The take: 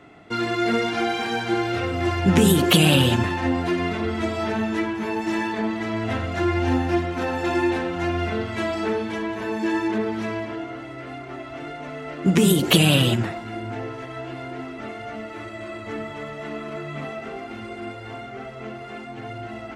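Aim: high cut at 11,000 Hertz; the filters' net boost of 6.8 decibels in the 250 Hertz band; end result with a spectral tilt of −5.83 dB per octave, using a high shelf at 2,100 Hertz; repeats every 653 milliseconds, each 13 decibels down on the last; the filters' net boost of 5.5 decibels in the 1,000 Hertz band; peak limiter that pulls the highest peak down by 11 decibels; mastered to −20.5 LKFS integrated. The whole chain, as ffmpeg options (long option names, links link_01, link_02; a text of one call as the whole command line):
ffmpeg -i in.wav -af "lowpass=11000,equalizer=frequency=250:width_type=o:gain=9,equalizer=frequency=1000:width_type=o:gain=8,highshelf=frequency=2100:gain=-5,alimiter=limit=-10dB:level=0:latency=1,aecho=1:1:653|1306|1959:0.224|0.0493|0.0108,volume=1dB" out.wav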